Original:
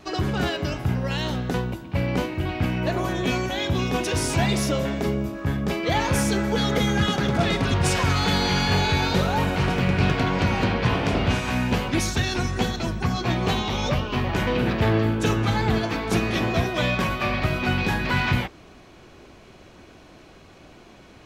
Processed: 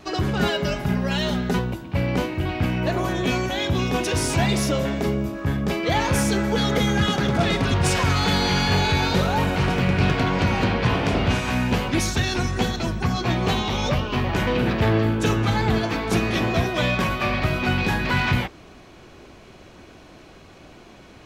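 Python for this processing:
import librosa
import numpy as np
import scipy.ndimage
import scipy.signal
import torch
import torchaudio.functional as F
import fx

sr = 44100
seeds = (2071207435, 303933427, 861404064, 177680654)

p1 = fx.comb(x, sr, ms=4.9, depth=0.75, at=(0.4, 1.59))
p2 = 10.0 ** (-23.0 / 20.0) * np.tanh(p1 / 10.0 ** (-23.0 / 20.0))
y = p1 + (p2 * 10.0 ** (-11.5 / 20.0))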